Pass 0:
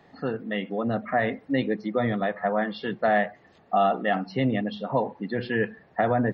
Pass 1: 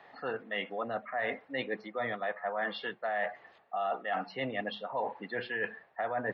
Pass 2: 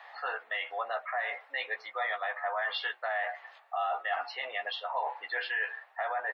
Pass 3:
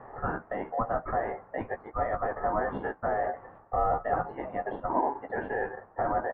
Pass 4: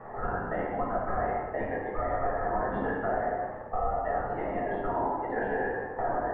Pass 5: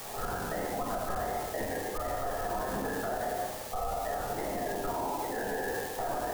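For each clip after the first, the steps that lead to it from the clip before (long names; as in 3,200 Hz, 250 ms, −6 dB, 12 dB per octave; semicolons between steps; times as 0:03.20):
three-way crossover with the lows and the highs turned down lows −18 dB, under 530 Hz, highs −17 dB, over 3,900 Hz; reversed playback; downward compressor 6 to 1, threshold −35 dBFS, peak gain reduction 14.5 dB; reversed playback; level +4 dB
high-pass filter 710 Hz 24 dB per octave; brickwall limiter −30.5 dBFS, peak gain reduction 8 dB; double-tracking delay 14 ms −6 dB; level +6 dB
high-pass filter 620 Hz 24 dB per octave; in parallel at −5 dB: decimation without filtering 35×; on the sum: low-pass filter 1,200 Hz 24 dB per octave; level +6 dB
downward compressor, threshold −33 dBFS, peak gain reduction 11 dB; convolution reverb RT60 1.4 s, pre-delay 4 ms, DRR −6 dB
spike at every zero crossing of −28 dBFS; brickwall limiter −23.5 dBFS, peak gain reduction 6 dB; level −1.5 dB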